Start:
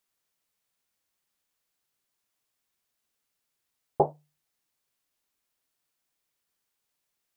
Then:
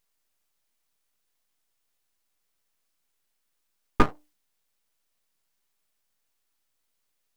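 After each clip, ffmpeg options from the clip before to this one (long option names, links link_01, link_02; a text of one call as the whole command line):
ffmpeg -i in.wav -af "aeval=exprs='abs(val(0))':channel_layout=same,volume=5.5dB" out.wav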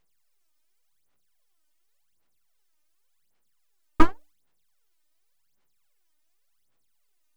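ffmpeg -i in.wav -af "aphaser=in_gain=1:out_gain=1:delay=3.3:decay=0.78:speed=0.89:type=sinusoidal,volume=-3.5dB" out.wav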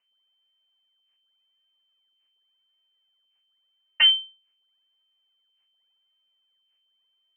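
ffmpeg -i in.wav -af "lowpass=frequency=2600:width_type=q:width=0.5098,lowpass=frequency=2600:width_type=q:width=0.6013,lowpass=frequency=2600:width_type=q:width=0.9,lowpass=frequency=2600:width_type=q:width=2.563,afreqshift=-3100,volume=-4dB" out.wav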